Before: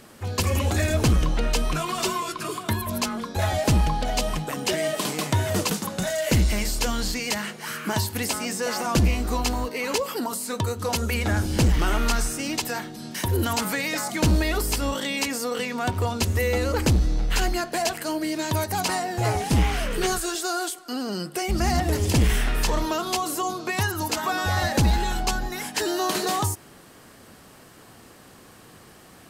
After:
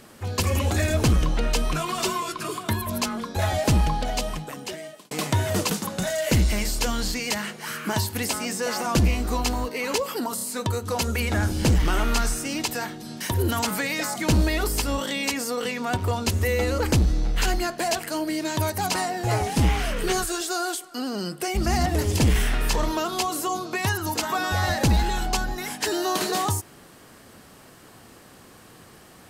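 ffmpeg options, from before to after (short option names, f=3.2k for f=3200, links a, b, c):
-filter_complex "[0:a]asplit=4[a][b][c][d];[a]atrim=end=5.11,asetpts=PTS-STARTPTS,afade=t=out:st=3.94:d=1.17[e];[b]atrim=start=5.11:end=10.382,asetpts=PTS-STARTPTS,afade=t=in:d=0.004:c=hsin[f];[c]atrim=start=10.348:end=10.382[g];[d]atrim=start=10.348[h];[e][f]concat=n=2:v=0:a=1[i];[i][g]acrossfade=d=0.004:c1=hsin:c2=hsin[j];[j][h]acrossfade=d=0.004:c1=hsin:c2=hsin"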